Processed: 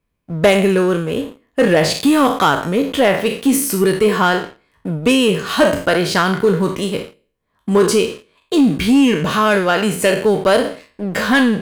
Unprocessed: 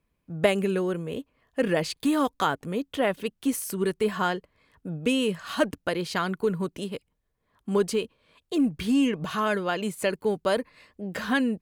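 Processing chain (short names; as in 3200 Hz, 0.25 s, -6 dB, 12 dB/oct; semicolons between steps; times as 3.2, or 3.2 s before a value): spectral trails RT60 0.48 s; sample leveller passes 2; gain +4 dB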